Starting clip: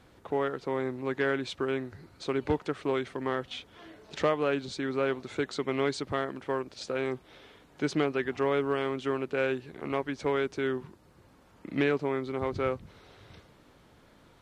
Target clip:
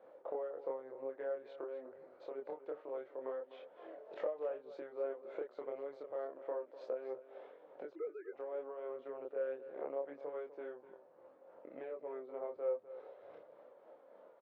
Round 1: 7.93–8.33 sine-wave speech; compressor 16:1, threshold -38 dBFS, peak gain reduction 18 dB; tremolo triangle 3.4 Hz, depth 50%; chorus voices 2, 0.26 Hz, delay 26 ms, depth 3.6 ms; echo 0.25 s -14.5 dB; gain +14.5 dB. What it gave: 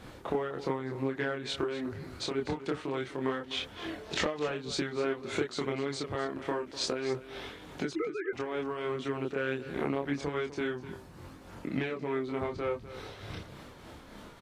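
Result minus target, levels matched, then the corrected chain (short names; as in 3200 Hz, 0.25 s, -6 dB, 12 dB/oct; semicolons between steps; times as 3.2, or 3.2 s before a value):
500 Hz band -3.0 dB
7.93–8.33 sine-wave speech; compressor 16:1, threshold -38 dBFS, peak gain reduction 18 dB; ladder band-pass 590 Hz, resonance 70%; tremolo triangle 3.4 Hz, depth 50%; chorus voices 2, 0.26 Hz, delay 26 ms, depth 3.6 ms; echo 0.25 s -14.5 dB; gain +14.5 dB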